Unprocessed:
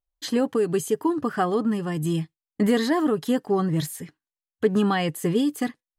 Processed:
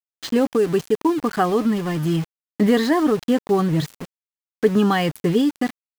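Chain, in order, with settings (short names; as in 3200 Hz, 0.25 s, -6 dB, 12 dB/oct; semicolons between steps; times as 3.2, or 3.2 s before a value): median filter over 5 samples; sample gate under -34 dBFS; gain +4 dB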